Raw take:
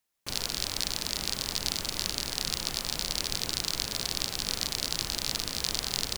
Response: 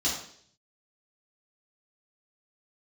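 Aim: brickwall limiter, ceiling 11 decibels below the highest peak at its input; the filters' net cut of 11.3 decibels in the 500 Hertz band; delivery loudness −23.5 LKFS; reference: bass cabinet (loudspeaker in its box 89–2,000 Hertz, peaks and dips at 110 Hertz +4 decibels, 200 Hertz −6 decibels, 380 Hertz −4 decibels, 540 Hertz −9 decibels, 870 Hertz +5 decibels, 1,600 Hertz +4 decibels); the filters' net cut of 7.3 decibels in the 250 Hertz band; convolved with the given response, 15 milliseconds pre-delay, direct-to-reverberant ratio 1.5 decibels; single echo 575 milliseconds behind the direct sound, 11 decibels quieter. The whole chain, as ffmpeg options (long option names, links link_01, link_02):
-filter_complex "[0:a]equalizer=frequency=250:width_type=o:gain=-4,equalizer=frequency=500:width_type=o:gain=-8.5,alimiter=limit=-18.5dB:level=0:latency=1,aecho=1:1:575:0.282,asplit=2[link_01][link_02];[1:a]atrim=start_sample=2205,adelay=15[link_03];[link_02][link_03]afir=irnorm=-1:irlink=0,volume=-10dB[link_04];[link_01][link_04]amix=inputs=2:normalize=0,highpass=frequency=89:width=0.5412,highpass=frequency=89:width=1.3066,equalizer=frequency=110:width_type=q:width=4:gain=4,equalizer=frequency=200:width_type=q:width=4:gain=-6,equalizer=frequency=380:width_type=q:width=4:gain=-4,equalizer=frequency=540:width_type=q:width=4:gain=-9,equalizer=frequency=870:width_type=q:width=4:gain=5,equalizer=frequency=1600:width_type=q:width=4:gain=4,lowpass=frequency=2000:width=0.5412,lowpass=frequency=2000:width=1.3066,volume=21.5dB"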